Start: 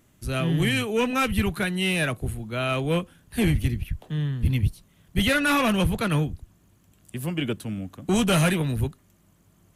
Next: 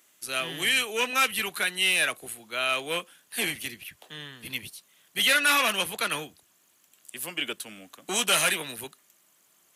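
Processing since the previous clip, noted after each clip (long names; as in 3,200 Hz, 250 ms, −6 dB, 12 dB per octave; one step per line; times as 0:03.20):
high-pass filter 400 Hz 12 dB per octave
tilt shelving filter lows −6.5 dB, about 1,300 Hz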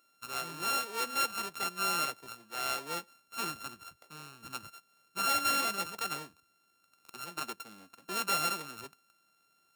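samples sorted by size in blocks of 32 samples
level −7.5 dB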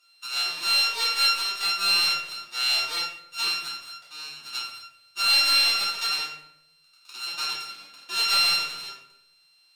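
resonant band-pass 4,100 Hz, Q 1.6
in parallel at −9 dB: soft clipping −30.5 dBFS, distortion −13 dB
on the sum: convolution reverb RT60 0.80 s, pre-delay 3 ms, DRR −10 dB
level +6 dB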